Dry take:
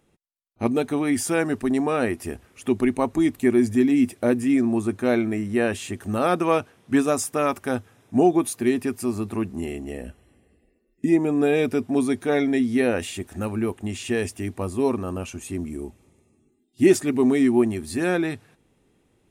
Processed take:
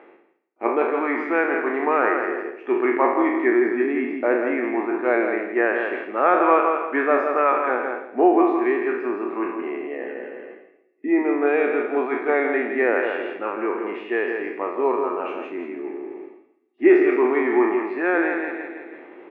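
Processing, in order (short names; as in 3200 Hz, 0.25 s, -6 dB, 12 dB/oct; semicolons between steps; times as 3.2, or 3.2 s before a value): spectral trails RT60 0.73 s; elliptic band-pass 340–2200 Hz, stop band 60 dB; feedback echo 0.165 s, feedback 32%, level -6 dB; reverse; upward compressor, threshold -24 dBFS; reverse; dynamic EQ 1300 Hz, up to +6 dB, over -36 dBFS, Q 0.83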